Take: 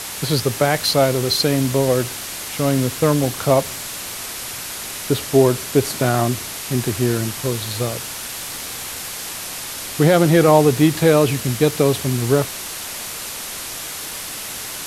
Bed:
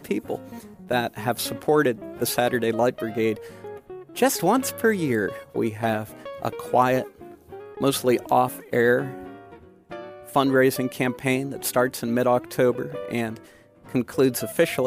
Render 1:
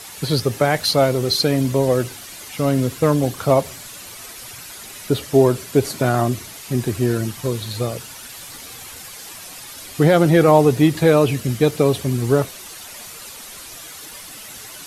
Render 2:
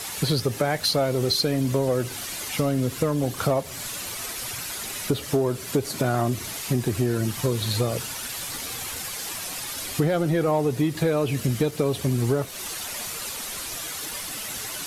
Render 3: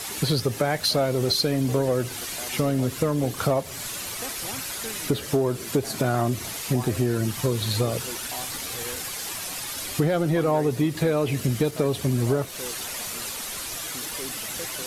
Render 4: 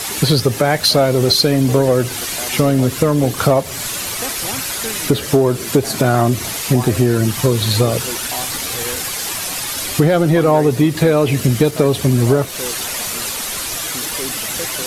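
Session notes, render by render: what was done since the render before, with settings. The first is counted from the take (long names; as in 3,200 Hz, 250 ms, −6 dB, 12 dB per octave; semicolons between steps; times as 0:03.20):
broadband denoise 10 dB, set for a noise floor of −30 dBFS
downward compressor 6 to 1, threshold −23 dBFS, peak gain reduction 14 dB; leveller curve on the samples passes 1
mix in bed −19.5 dB
level +9.5 dB; brickwall limiter −3 dBFS, peak gain reduction 1.5 dB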